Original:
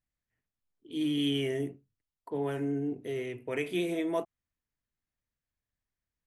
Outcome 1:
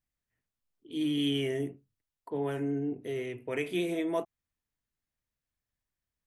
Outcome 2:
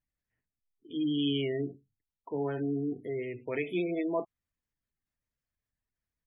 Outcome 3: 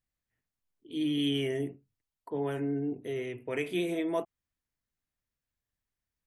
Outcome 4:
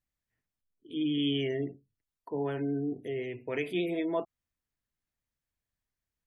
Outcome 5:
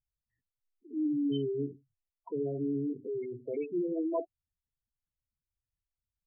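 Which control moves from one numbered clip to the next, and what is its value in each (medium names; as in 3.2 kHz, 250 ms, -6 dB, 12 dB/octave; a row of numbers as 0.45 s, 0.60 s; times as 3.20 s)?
spectral gate, under each frame's peak: -60 dB, -25 dB, -50 dB, -35 dB, -10 dB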